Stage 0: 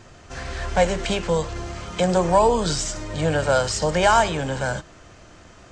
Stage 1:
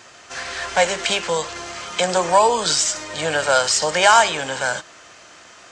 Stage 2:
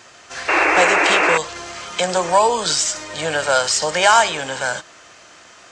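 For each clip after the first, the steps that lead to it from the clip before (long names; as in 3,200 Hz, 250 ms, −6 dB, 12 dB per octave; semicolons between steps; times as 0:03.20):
high-pass filter 1,300 Hz 6 dB per octave; level +8.5 dB
sound drawn into the spectrogram noise, 0:00.48–0:01.38, 290–2,800 Hz −16 dBFS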